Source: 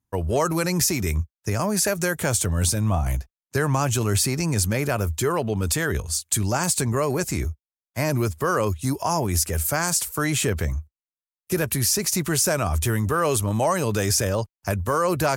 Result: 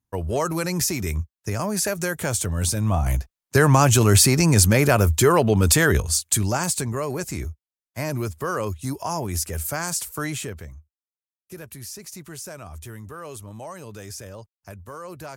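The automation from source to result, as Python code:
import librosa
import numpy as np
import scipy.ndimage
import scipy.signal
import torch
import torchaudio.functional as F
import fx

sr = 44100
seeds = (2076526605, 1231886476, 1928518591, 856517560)

y = fx.gain(x, sr, db=fx.line((2.61, -2.0), (3.62, 6.5), (5.88, 6.5), (6.94, -4.0), (10.25, -4.0), (10.73, -15.5)))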